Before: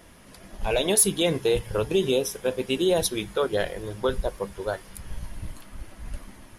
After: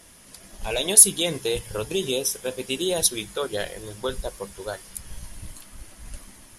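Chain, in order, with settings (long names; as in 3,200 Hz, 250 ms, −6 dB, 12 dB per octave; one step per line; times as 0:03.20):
parametric band 8,400 Hz +13 dB 2.2 octaves
level −4 dB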